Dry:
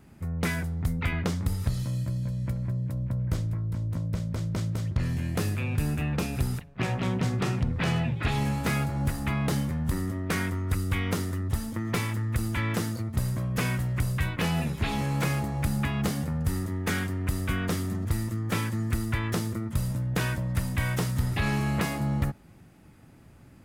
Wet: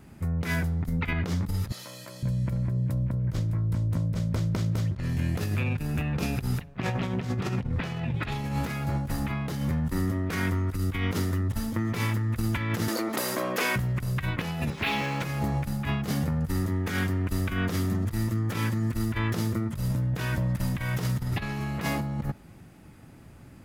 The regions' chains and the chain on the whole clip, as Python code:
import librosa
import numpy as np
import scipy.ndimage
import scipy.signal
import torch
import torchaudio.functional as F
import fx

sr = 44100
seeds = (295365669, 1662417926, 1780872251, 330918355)

y = fx.chain(x, sr, fx.highpass(hz=600.0, slope=12),
    fx.env_flatten(amount_pct=70), at=(1.72, 2.23))
y = fx.chain(y, sr, fx.highpass(hz=310.0, slope=24),
    fx.env_flatten(amount_pct=70), at=(12.88, 13.76))
y = fx.chain(y, sr, fx.highpass(hz=350.0, slope=6),
    fx.dynamic_eq(hz=2500.0, q=1.3, threshold_db=-49.0, ratio=4.0, max_db=7),
    fx.resample_linear(factor=3), at=(14.7, 15.22))
y = fx.dynamic_eq(y, sr, hz=8700.0, q=2.2, threshold_db=-58.0, ratio=4.0, max_db=-6)
y = fx.over_compress(y, sr, threshold_db=-29.0, ratio=-0.5)
y = y * librosa.db_to_amplitude(2.0)